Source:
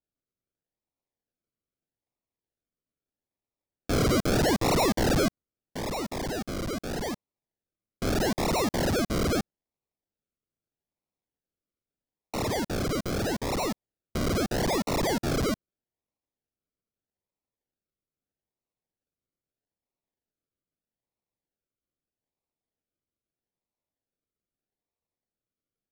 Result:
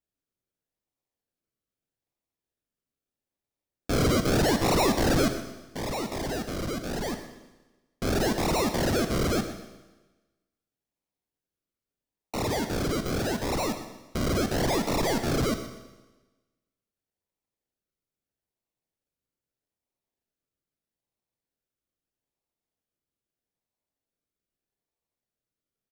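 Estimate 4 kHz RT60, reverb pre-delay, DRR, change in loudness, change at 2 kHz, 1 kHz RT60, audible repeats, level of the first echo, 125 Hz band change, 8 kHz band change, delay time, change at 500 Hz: 1.2 s, 15 ms, 6.5 dB, +0.5 dB, +1.0 dB, 1.2 s, 2, -13.0 dB, +1.0 dB, +1.0 dB, 123 ms, +0.5 dB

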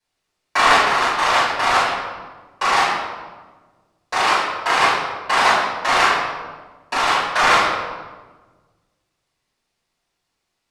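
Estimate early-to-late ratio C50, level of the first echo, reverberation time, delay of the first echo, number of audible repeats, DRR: -0.5 dB, no echo, 1.4 s, no echo, no echo, -13.0 dB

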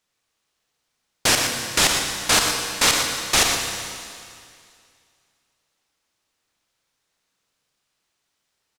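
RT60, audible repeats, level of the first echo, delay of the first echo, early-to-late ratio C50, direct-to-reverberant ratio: 2.3 s, 1, -8.0 dB, 119 ms, 2.5 dB, 1.5 dB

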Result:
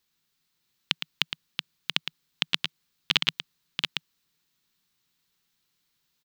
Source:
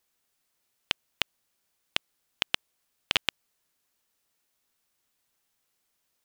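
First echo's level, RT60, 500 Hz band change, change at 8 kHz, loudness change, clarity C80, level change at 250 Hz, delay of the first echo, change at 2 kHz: -9.0 dB, no reverb, -3.5 dB, +0.5 dB, +2.0 dB, no reverb, +4.5 dB, 112 ms, +2.0 dB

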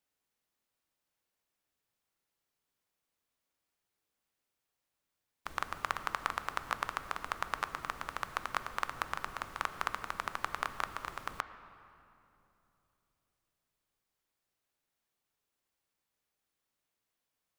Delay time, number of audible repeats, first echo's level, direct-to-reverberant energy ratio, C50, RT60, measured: no echo, no echo, no echo, 10.5 dB, 11.5 dB, 2.9 s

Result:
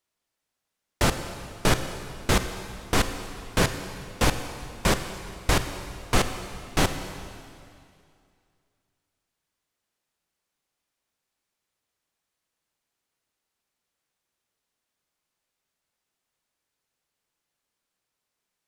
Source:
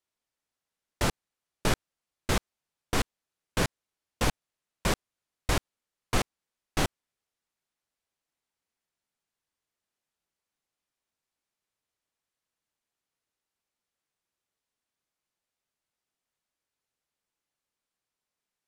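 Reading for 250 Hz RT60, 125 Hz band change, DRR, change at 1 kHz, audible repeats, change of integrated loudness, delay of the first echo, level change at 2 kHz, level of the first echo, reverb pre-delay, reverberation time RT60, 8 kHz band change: 2.4 s, +5.5 dB, 8.0 dB, +5.5 dB, no echo, +4.5 dB, no echo, +5.5 dB, no echo, 25 ms, 2.4 s, +5.5 dB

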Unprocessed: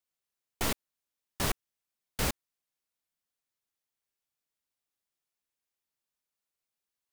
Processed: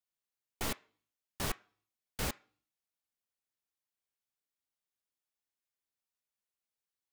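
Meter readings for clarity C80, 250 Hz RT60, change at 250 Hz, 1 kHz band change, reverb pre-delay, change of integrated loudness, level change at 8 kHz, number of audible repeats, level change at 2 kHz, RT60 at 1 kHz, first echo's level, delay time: 26.5 dB, 0.60 s, -5.5 dB, -5.0 dB, 3 ms, -5.5 dB, -5.5 dB, no echo, -5.0 dB, 0.45 s, no echo, no echo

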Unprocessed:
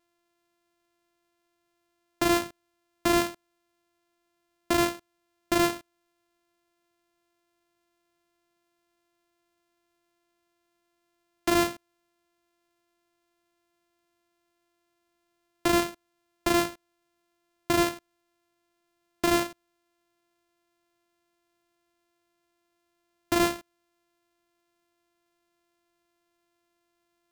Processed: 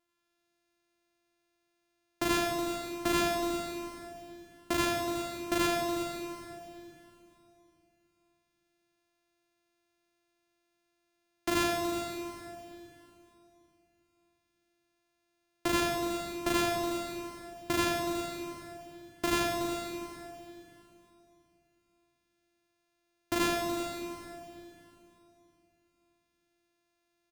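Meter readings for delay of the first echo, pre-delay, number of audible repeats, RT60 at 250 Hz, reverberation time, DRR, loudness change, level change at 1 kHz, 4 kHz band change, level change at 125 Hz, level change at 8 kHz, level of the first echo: 90 ms, 31 ms, 2, 3.4 s, 3.0 s, 0.0 dB, -5.5 dB, -2.0 dB, -1.5 dB, -2.5 dB, -2.0 dB, -8.5 dB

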